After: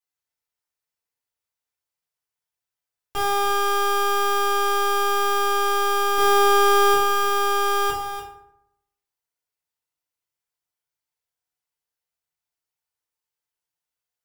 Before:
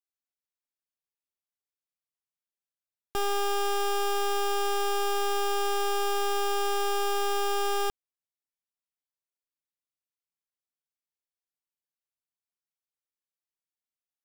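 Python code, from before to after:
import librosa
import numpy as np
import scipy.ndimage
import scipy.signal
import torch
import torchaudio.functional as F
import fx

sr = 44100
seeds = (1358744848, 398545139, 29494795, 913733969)

y = fx.peak_eq(x, sr, hz=260.0, db=-12.0, octaves=0.8)
y = fx.leveller(y, sr, passes=5, at=(6.18, 6.94))
y = y + 10.0 ** (-9.5 / 20.0) * np.pad(y, (int(291 * sr / 1000.0), 0))[:len(y)]
y = fx.rev_fdn(y, sr, rt60_s=0.78, lf_ratio=1.2, hf_ratio=0.55, size_ms=20.0, drr_db=-6.0)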